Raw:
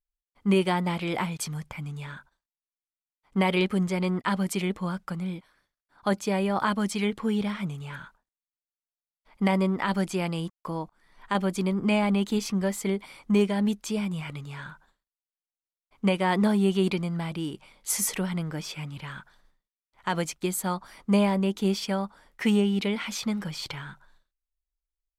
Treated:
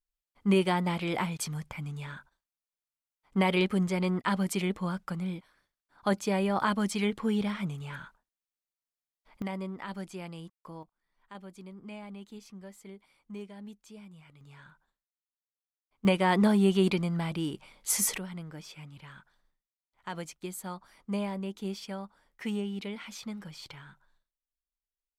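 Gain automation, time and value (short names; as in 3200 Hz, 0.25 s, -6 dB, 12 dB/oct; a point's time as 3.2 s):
-2 dB
from 9.42 s -12.5 dB
from 10.83 s -20 dB
from 14.41 s -13.5 dB
from 16.05 s -0.5 dB
from 18.18 s -10.5 dB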